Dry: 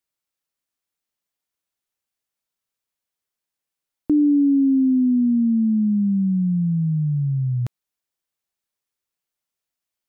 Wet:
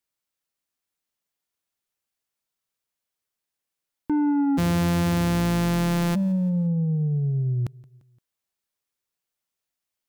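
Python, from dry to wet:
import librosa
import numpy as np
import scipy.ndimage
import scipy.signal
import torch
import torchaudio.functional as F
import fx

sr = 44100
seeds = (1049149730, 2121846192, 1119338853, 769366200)

y = fx.sample_sort(x, sr, block=256, at=(4.57, 6.14), fade=0.02)
y = 10.0 ** (-19.5 / 20.0) * np.tanh(y / 10.0 ** (-19.5 / 20.0))
y = fx.echo_feedback(y, sr, ms=173, feedback_pct=50, wet_db=-23.0)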